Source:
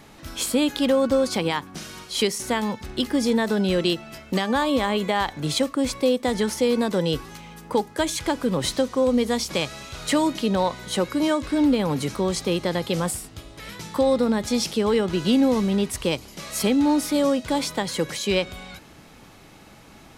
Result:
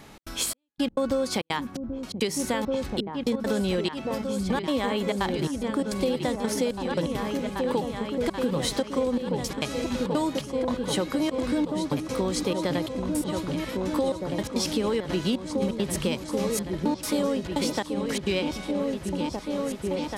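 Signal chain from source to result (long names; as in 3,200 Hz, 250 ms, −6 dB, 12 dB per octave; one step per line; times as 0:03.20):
gate pattern "xx.xxx...x.xxx" 170 BPM −60 dB
echo whose low-pass opens from repeat to repeat 783 ms, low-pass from 200 Hz, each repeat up 2 octaves, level −3 dB
downward compressor, threshold −22 dBFS, peak gain reduction 7 dB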